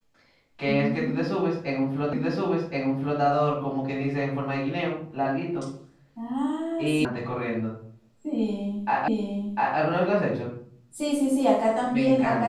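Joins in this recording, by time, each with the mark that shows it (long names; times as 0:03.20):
0:02.13: the same again, the last 1.07 s
0:07.05: cut off before it has died away
0:09.08: the same again, the last 0.7 s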